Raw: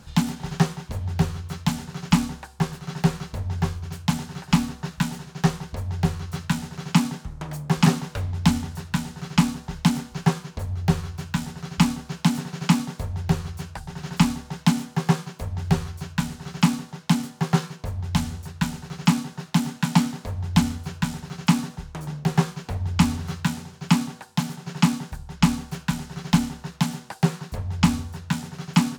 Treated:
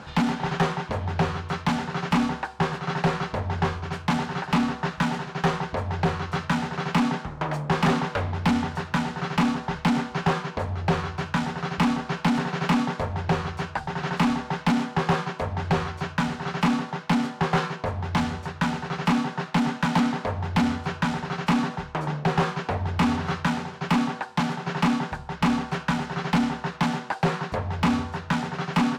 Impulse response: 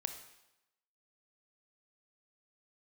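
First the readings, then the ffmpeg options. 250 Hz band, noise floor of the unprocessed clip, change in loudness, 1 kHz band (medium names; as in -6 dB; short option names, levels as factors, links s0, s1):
-1.0 dB, -47 dBFS, -0.5 dB, +5.5 dB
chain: -filter_complex "[0:a]aemphasis=mode=reproduction:type=50fm,asplit=2[s0][s1];[s1]highpass=f=720:p=1,volume=31.6,asoftclip=type=tanh:threshold=0.668[s2];[s0][s2]amix=inputs=2:normalize=0,lowpass=f=1700:p=1,volume=0.501,volume=0.398"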